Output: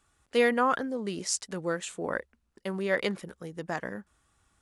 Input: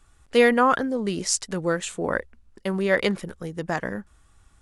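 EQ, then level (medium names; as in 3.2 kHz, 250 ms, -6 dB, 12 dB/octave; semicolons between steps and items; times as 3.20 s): high-pass 140 Hz 6 dB/octave; -6.0 dB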